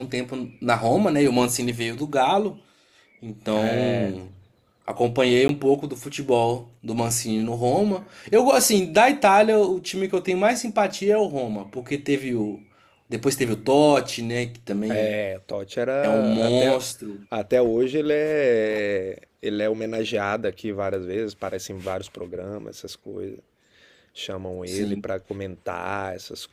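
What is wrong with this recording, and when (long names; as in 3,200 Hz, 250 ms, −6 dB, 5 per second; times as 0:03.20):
0:05.48–0:05.49: drop-out 12 ms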